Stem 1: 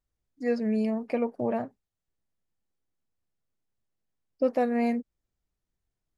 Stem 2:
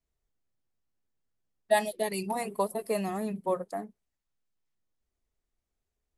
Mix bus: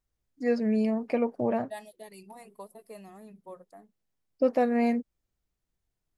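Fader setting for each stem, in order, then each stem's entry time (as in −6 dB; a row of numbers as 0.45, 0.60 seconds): +1.0, −16.0 decibels; 0.00, 0.00 seconds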